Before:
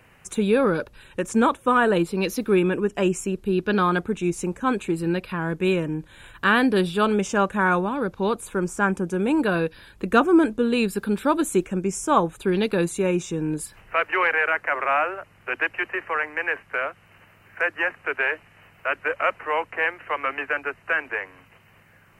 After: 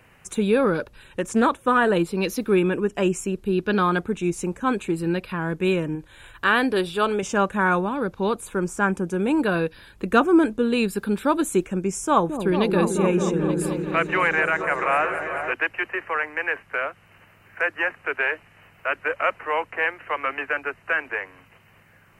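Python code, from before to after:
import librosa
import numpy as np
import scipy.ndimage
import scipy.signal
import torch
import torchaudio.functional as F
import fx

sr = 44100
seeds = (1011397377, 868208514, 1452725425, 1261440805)

y = fx.doppler_dist(x, sr, depth_ms=0.12, at=(0.74, 1.89))
y = fx.peak_eq(y, sr, hz=190.0, db=-8.0, octaves=0.77, at=(5.95, 7.23))
y = fx.echo_opening(y, sr, ms=220, hz=400, octaves=1, feedback_pct=70, wet_db=-3, at=(12.07, 15.53))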